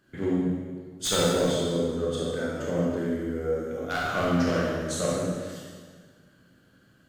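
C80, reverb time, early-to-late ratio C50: 0.5 dB, 1.6 s, -2.5 dB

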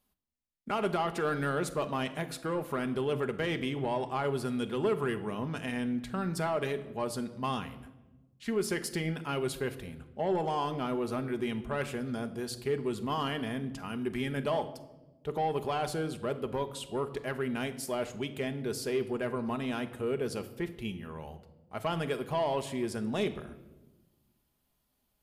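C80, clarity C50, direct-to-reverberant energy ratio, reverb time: 16.0 dB, 14.0 dB, 7.5 dB, 1.1 s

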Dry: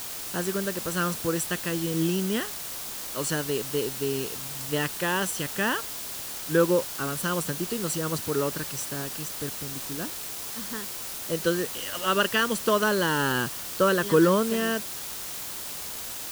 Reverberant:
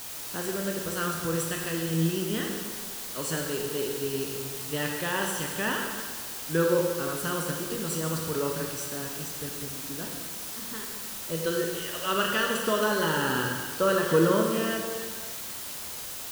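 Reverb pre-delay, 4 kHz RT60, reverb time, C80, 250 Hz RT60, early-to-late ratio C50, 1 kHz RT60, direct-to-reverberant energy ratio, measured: 7 ms, 1.6 s, 1.7 s, 4.0 dB, 1.7 s, 2.5 dB, 1.7 s, 0.5 dB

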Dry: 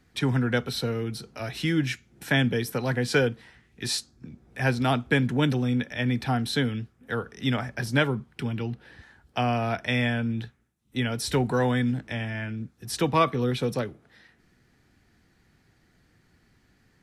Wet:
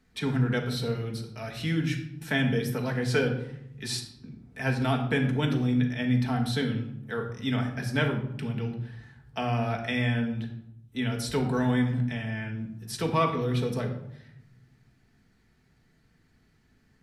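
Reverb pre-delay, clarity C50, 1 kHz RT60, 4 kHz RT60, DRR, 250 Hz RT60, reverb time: 4 ms, 7.5 dB, 0.70 s, 0.50 s, 2.0 dB, 1.3 s, 0.75 s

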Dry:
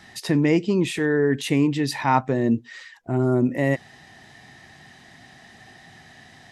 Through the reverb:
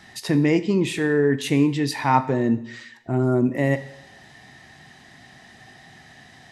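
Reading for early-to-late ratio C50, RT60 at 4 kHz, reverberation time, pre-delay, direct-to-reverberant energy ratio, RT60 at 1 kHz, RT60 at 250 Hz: 15.0 dB, 0.70 s, 0.80 s, 4 ms, 11.5 dB, 0.80 s, 0.85 s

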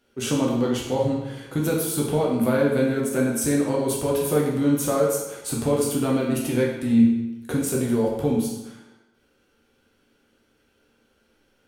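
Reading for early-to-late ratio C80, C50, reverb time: 5.5 dB, 2.5 dB, 0.95 s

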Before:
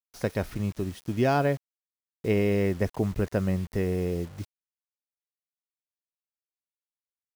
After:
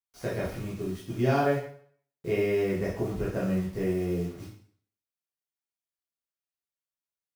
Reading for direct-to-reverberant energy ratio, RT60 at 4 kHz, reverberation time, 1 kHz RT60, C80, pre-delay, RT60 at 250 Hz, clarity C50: -8.0 dB, 0.55 s, 0.55 s, 0.55 s, 7.5 dB, 10 ms, 0.50 s, 3.5 dB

